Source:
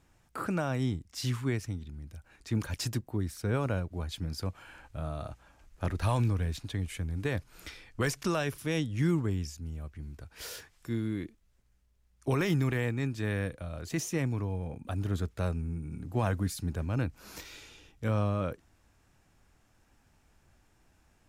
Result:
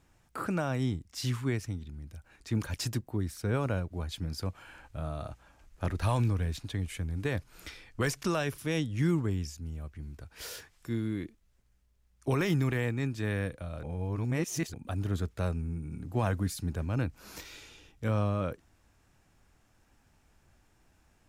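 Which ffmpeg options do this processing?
-filter_complex "[0:a]asplit=3[s0][s1][s2];[s0]atrim=end=13.832[s3];[s1]atrim=start=13.828:end=14.742,asetpts=PTS-STARTPTS,areverse[s4];[s2]atrim=start=14.738[s5];[s3][s4]acrossfade=d=0.004:c1=hsin:c2=hsin[s6];[s6][s5]acrossfade=d=0.004:c1=hsin:c2=hsin"

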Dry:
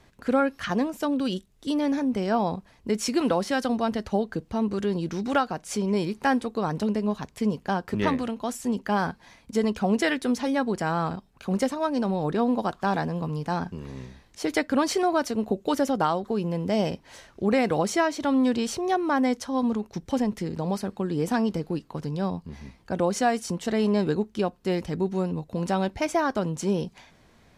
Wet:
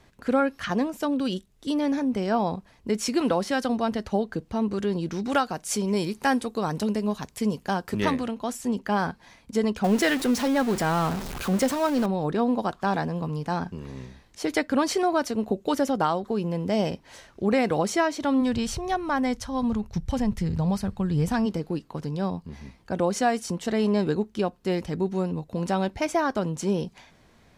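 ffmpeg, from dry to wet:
-filter_complex "[0:a]asettb=1/sr,asplit=3[s0][s1][s2];[s0]atrim=end=5.324[s3];[s1]atrim=start=5.32:end=8.19,asetpts=PTS-STARTPTS,afade=t=in:d=0.004:c=qsin,afade=t=out:st=2.866:d=0.004:c=qsin,aemphasis=mode=production:type=cd[s4];[s2]atrim=start=8.186[s5];[s3][s4]acrossfade=d=0.004:c1=hsin:c2=qsin[s6];[s6][s5]acrossfade=d=0.004:c1=qsin:c2=hsin,asettb=1/sr,asplit=3[s7][s8][s9];[s7]atrim=end=9.844[s10];[s8]atrim=start=9.84:end=12.06,asetpts=PTS-STARTPTS,afade=t=in:d=0.004:c=qsin,afade=t=out:st=2.216:d=0.004:c=qsin,aeval=exprs='val(0)+0.5*0.0376*sgn(val(0))':c=same[s11];[s9]atrim=start=12.056[s12];[s10][s11]acrossfade=d=0.004:c1=hsin:c2=qsin[s13];[s13][s12]acrossfade=d=0.004:c1=qsin:c2=hsin,asplit=3[s14][s15][s16];[s14]afade=t=out:st=18.4:d=0.02[s17];[s15]asubboost=boost=11:cutoff=95,afade=t=in:st=18.4:d=0.02,afade=t=out:st=21.45:d=0.02[s18];[s16]afade=t=in:st=21.45:d=0.02[s19];[s17][s18][s19]amix=inputs=3:normalize=0"

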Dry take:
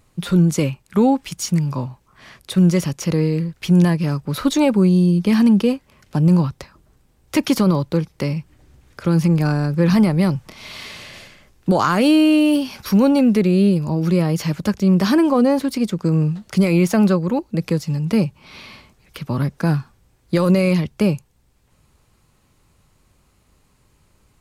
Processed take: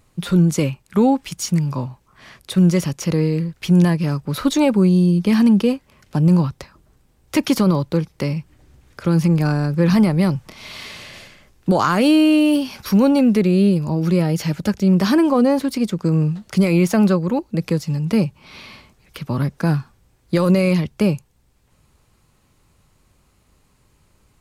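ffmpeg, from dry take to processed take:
-filter_complex "[0:a]asettb=1/sr,asplit=3[s0][s1][s2];[s0]atrim=end=14.204[s3];[s1]atrim=start=14.2:end=14.93,asetpts=PTS-STARTPTS,afade=t=in:d=0.004:c=qsin,afade=t=out:st=0.726:d=0.004:c=qsin,asuperstop=centerf=1100:order=4:qfactor=7[s4];[s2]atrim=start=14.926[s5];[s3][s4]acrossfade=d=0.004:c1=hsin:c2=qsin[s6];[s6][s5]acrossfade=d=0.004:c1=qsin:c2=hsin"

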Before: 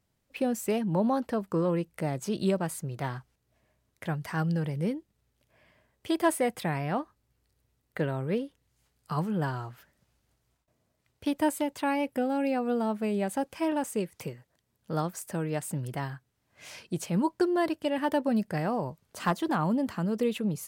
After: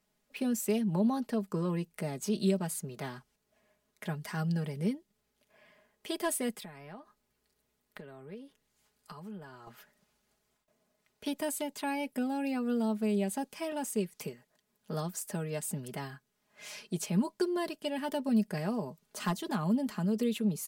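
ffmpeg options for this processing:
-filter_complex "[0:a]asettb=1/sr,asplit=3[s0][s1][s2];[s0]atrim=end=6.514[s3];[s1]atrim=start=6.51:end=9.67,asetpts=PTS-STARTPTS,afade=t=in:d=0.004:c=qsin,afade=t=out:st=3.156:d=0.004:c=qsin,acompressor=threshold=0.00891:ratio=10:attack=3.2:release=140:knee=1:detection=peak[s4];[s2]atrim=start=9.666[s5];[s3][s4]acrossfade=d=0.004:c1=hsin:c2=qsin[s6];[s6][s5]acrossfade=d=0.004:c1=qsin:c2=hsin,equalizer=f=72:w=0.78:g=-14.5,aecho=1:1:4.8:0.65,acrossover=split=350|3000[s7][s8][s9];[s8]acompressor=threshold=0.00224:ratio=1.5[s10];[s7][s10][s9]amix=inputs=3:normalize=0"

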